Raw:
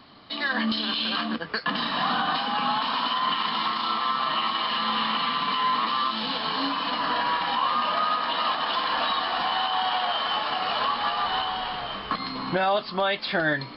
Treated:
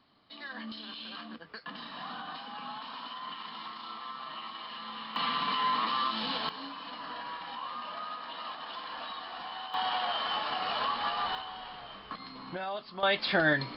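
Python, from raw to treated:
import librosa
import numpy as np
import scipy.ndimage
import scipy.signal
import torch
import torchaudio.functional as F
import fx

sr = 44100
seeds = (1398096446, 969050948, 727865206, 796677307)

y = fx.gain(x, sr, db=fx.steps((0.0, -16.0), (5.16, -5.0), (6.49, -15.0), (9.74, -6.0), (11.35, -13.5), (13.03, -1.5)))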